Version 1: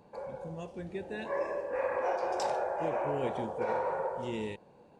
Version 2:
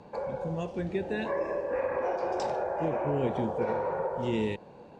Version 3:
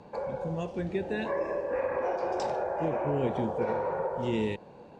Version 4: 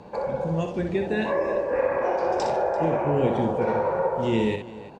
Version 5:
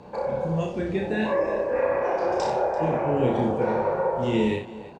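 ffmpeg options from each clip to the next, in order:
-filter_complex "[0:a]lowpass=6.4k,acrossover=split=370[a][b];[b]acompressor=threshold=-41dB:ratio=4[c];[a][c]amix=inputs=2:normalize=0,volume=8.5dB"
-af anull
-af "aecho=1:1:61|340:0.473|0.133,volume=5.5dB"
-filter_complex "[0:a]asplit=2[a][b];[b]adelay=32,volume=-3.5dB[c];[a][c]amix=inputs=2:normalize=0,volume=-1.5dB"

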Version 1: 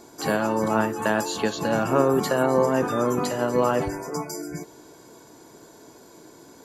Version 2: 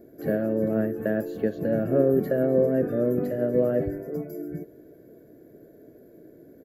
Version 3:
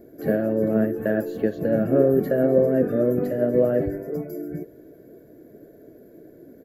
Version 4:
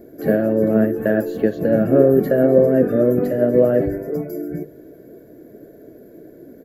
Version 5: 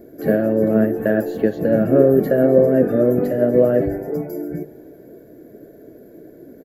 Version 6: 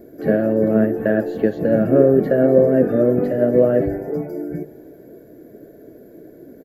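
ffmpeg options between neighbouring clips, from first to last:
-af "firequalizer=gain_entry='entry(620,0);entry(900,-30);entry(1700,-8);entry(2700,-22);entry(5700,-28);entry(8900,-29);entry(13000,-2)':delay=0.05:min_phase=1"
-af "flanger=delay=0.9:depth=4.2:regen=74:speed=1.9:shape=triangular,volume=7.5dB"
-af "bandreject=f=50:t=h:w=6,bandreject=f=100:t=h:w=6,bandreject=f=150:t=h:w=6,volume=5dB"
-filter_complex "[0:a]asplit=5[a][b][c][d][e];[b]adelay=161,afreqshift=70,volume=-23.5dB[f];[c]adelay=322,afreqshift=140,volume=-28.7dB[g];[d]adelay=483,afreqshift=210,volume=-33.9dB[h];[e]adelay=644,afreqshift=280,volume=-39.1dB[i];[a][f][g][h][i]amix=inputs=5:normalize=0"
-filter_complex "[0:a]acrossover=split=4600[a][b];[b]acompressor=threshold=-56dB:ratio=4:attack=1:release=60[c];[a][c]amix=inputs=2:normalize=0"

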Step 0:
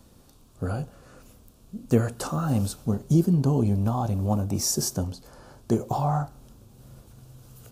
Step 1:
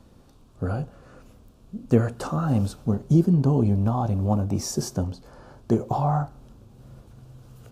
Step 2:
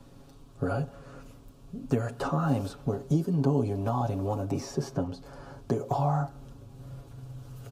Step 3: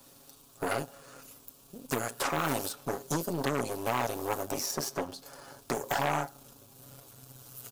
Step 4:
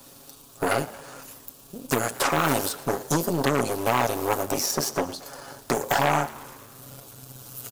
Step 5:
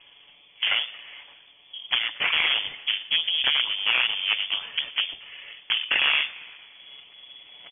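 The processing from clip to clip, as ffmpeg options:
-af "lowpass=f=2.6k:p=1,volume=2dB"
-filter_complex "[0:a]acrossover=split=260|3400[a][b][c];[a]acompressor=threshold=-34dB:ratio=4[d];[b]acompressor=threshold=-28dB:ratio=4[e];[c]acompressor=threshold=-54dB:ratio=4[f];[d][e][f]amix=inputs=3:normalize=0,aecho=1:1:7.2:0.74"
-af "aeval=exprs='0.251*(cos(1*acos(clip(val(0)/0.251,-1,1)))-cos(1*PI/2))+0.0501*(cos(8*acos(clip(val(0)/0.251,-1,1)))-cos(8*PI/2))':c=same,aemphasis=mode=production:type=riaa,volume=-1.5dB"
-filter_complex "[0:a]asplit=7[a][b][c][d][e][f][g];[b]adelay=114,afreqshift=76,volume=-19.5dB[h];[c]adelay=228,afreqshift=152,volume=-23.5dB[i];[d]adelay=342,afreqshift=228,volume=-27.5dB[j];[e]adelay=456,afreqshift=304,volume=-31.5dB[k];[f]adelay=570,afreqshift=380,volume=-35.6dB[l];[g]adelay=684,afreqshift=456,volume=-39.6dB[m];[a][h][i][j][k][l][m]amix=inputs=7:normalize=0,volume=7.5dB"
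-af "lowpass=f=3k:t=q:w=0.5098,lowpass=f=3k:t=q:w=0.6013,lowpass=f=3k:t=q:w=0.9,lowpass=f=3k:t=q:w=2.563,afreqshift=-3500"

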